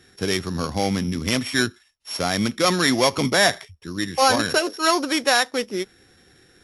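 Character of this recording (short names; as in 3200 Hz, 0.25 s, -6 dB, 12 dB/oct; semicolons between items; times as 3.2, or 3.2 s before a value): a buzz of ramps at a fixed pitch in blocks of 8 samples; AAC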